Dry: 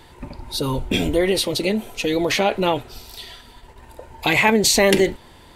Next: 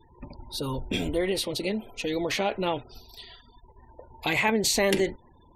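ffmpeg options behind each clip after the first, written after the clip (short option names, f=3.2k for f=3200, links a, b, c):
-af "afftfilt=real='re*gte(hypot(re,im),0.01)':imag='im*gte(hypot(re,im),0.01)':win_size=1024:overlap=0.75,volume=-8dB"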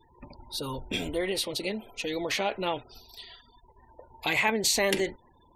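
-af "lowshelf=f=440:g=-6.5"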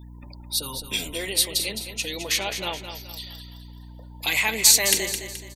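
-filter_complex "[0:a]asplit=2[a][b];[b]aecho=0:1:213|426|639|852:0.355|0.138|0.054|0.021[c];[a][c]amix=inputs=2:normalize=0,crystalizer=i=7:c=0,aeval=exprs='val(0)+0.0158*(sin(2*PI*60*n/s)+sin(2*PI*2*60*n/s)/2+sin(2*PI*3*60*n/s)/3+sin(2*PI*4*60*n/s)/4+sin(2*PI*5*60*n/s)/5)':c=same,volume=-5dB"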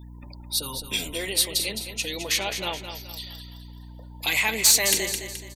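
-af "asoftclip=type=tanh:threshold=-9dB"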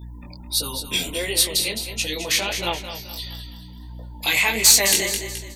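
-af "flanger=delay=17.5:depth=5.1:speed=1.5,volume=7dB"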